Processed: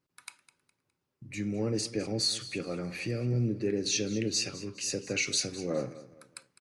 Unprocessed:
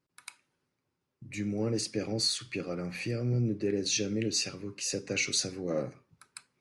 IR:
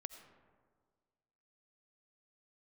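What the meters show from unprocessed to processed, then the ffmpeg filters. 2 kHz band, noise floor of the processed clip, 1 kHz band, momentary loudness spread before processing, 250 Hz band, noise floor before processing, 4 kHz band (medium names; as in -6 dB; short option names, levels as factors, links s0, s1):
0.0 dB, -83 dBFS, 0.0 dB, 18 LU, 0.0 dB, -83 dBFS, 0.0 dB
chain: -af "aecho=1:1:206|412|618:0.15|0.0509|0.0173"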